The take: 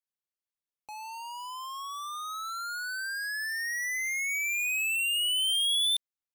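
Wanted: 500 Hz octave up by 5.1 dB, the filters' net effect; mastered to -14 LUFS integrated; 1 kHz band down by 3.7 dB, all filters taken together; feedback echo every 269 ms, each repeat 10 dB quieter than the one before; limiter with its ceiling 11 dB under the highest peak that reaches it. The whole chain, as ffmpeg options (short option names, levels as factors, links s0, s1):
-af "equalizer=f=500:t=o:g=9,equalizer=f=1000:t=o:g=-6.5,alimiter=level_in=3.76:limit=0.0631:level=0:latency=1,volume=0.266,aecho=1:1:269|538|807|1076:0.316|0.101|0.0324|0.0104,volume=11.9"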